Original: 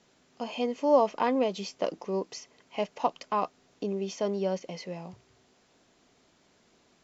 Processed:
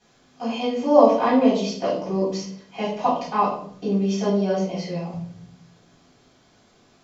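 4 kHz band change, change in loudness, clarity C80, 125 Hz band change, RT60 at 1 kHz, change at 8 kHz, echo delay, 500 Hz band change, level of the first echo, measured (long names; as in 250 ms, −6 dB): +6.5 dB, +8.5 dB, 8.0 dB, +13.0 dB, 0.55 s, can't be measured, no echo audible, +7.5 dB, no echo audible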